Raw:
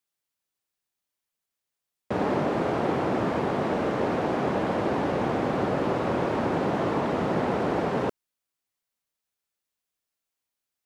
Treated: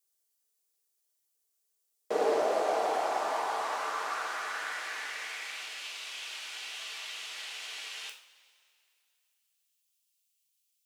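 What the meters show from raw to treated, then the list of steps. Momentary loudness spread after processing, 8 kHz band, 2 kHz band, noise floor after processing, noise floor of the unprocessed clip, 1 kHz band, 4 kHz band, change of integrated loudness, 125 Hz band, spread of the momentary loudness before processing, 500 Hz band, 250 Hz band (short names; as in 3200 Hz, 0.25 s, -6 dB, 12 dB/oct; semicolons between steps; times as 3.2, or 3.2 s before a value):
10 LU, n/a, -1.5 dB, -78 dBFS, under -85 dBFS, -5.0 dB, +4.0 dB, -7.0 dB, under -35 dB, 1 LU, -8.0 dB, -22.0 dB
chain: tone controls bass -2 dB, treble +15 dB; high-pass sweep 420 Hz -> 2800 Hz, 1.92–5.86; two-slope reverb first 0.46 s, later 2.6 s, from -18 dB, DRR 2 dB; gain -7.5 dB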